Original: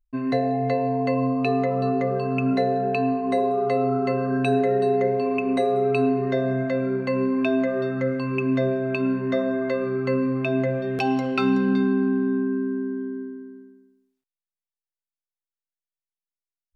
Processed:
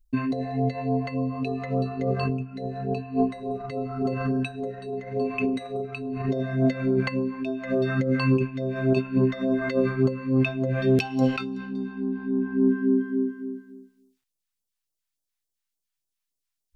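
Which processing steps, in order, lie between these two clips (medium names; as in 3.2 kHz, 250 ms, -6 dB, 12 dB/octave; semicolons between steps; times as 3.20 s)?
2.29–3.71 s: bass shelf 130 Hz +11.5 dB; compressor with a negative ratio -26 dBFS, ratio -0.5; phase shifter stages 2, 3.5 Hz, lowest notch 320–2000 Hz; trim +4.5 dB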